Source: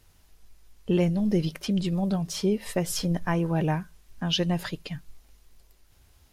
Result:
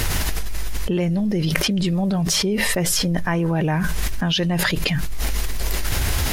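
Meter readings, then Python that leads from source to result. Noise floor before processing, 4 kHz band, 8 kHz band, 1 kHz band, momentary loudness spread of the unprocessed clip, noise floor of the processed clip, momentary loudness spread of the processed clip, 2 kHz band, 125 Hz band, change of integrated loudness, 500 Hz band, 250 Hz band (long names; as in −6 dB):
−60 dBFS, +10.0 dB, +13.5 dB, +6.5 dB, 11 LU, −24 dBFS, 7 LU, +14.0 dB, +6.5 dB, +5.5 dB, +4.0 dB, +5.0 dB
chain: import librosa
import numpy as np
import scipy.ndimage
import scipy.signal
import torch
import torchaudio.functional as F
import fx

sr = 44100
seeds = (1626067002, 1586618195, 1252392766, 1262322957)

y = fx.peak_eq(x, sr, hz=1900.0, db=4.5, octaves=0.68)
y = fx.env_flatten(y, sr, amount_pct=100)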